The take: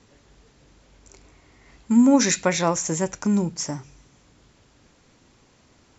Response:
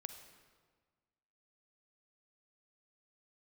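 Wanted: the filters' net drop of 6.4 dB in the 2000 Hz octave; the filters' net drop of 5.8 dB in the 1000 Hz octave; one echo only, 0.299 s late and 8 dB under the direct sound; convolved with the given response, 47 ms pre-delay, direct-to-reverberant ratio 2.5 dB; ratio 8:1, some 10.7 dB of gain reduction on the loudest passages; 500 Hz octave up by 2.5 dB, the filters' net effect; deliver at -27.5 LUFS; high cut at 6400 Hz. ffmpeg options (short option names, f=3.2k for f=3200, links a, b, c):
-filter_complex "[0:a]lowpass=6.4k,equalizer=f=500:t=o:g=5.5,equalizer=f=1k:t=o:g=-8.5,equalizer=f=2k:t=o:g=-5.5,acompressor=threshold=-22dB:ratio=8,aecho=1:1:299:0.398,asplit=2[a][b];[1:a]atrim=start_sample=2205,adelay=47[c];[b][c]afir=irnorm=-1:irlink=0,volume=1dB[d];[a][d]amix=inputs=2:normalize=0,volume=-1.5dB"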